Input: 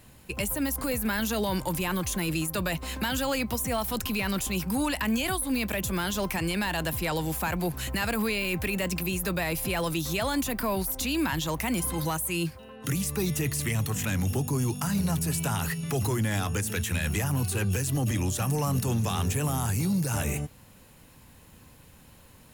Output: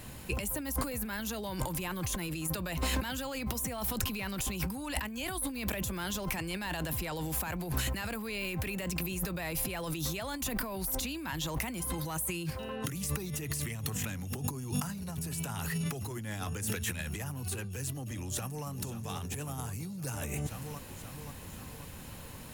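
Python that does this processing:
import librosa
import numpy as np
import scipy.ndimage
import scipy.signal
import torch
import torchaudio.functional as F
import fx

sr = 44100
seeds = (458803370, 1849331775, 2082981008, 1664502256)

y = fx.echo_throw(x, sr, start_s=18.24, length_s=0.42, ms=530, feedback_pct=55, wet_db=-7.0)
y = fx.over_compress(y, sr, threshold_db=-36.0, ratio=-1.0)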